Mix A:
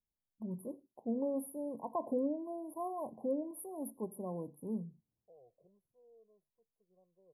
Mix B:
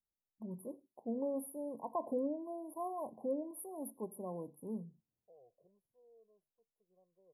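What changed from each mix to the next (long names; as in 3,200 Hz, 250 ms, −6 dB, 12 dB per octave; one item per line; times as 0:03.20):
master: add low-shelf EQ 270 Hz −6 dB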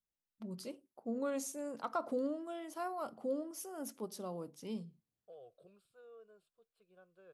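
second voice +8.0 dB
master: remove linear-phase brick-wall band-stop 1,100–9,600 Hz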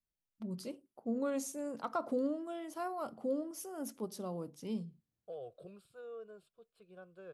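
second voice +8.0 dB
master: add low-shelf EQ 270 Hz +6 dB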